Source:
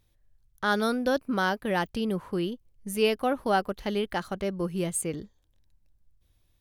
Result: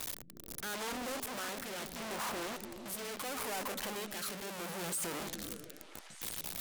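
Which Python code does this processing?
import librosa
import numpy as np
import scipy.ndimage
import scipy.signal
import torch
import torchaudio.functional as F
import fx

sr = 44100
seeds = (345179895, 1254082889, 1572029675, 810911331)

y = np.sign(x) * np.sqrt(np.mean(np.square(x)))
y = fx.peak_eq(y, sr, hz=90.0, db=-5.5, octaves=1.0)
y = fx.echo_stepped(y, sr, ms=147, hz=160.0, octaves=0.7, feedback_pct=70, wet_db=-1.5)
y = fx.rotary(y, sr, hz=0.75)
y = fx.tilt_eq(y, sr, slope=4.0)
y = 10.0 ** (-31.0 / 20.0) * np.tanh(y / 10.0 ** (-31.0 / 20.0))
y = fx.doppler_dist(y, sr, depth_ms=0.65, at=(0.74, 3.25))
y = F.gain(torch.from_numpy(y), -3.0).numpy()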